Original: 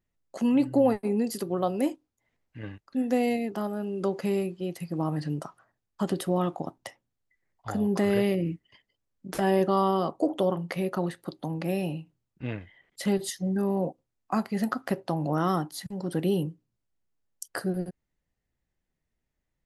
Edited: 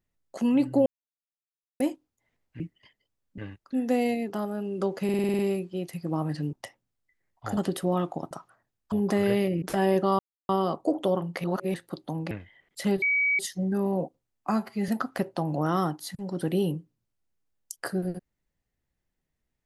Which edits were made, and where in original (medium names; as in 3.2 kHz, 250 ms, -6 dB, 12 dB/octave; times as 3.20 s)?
0.86–1.80 s: mute
4.26 s: stutter 0.05 s, 8 plays
5.40–6.01 s: swap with 6.75–7.79 s
8.49–9.27 s: move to 2.60 s
9.84 s: insert silence 0.30 s
10.79–11.09 s: reverse
11.66–12.52 s: delete
13.23 s: add tone 2.27 kHz -21 dBFS 0.37 s
14.35–14.60 s: stretch 1.5×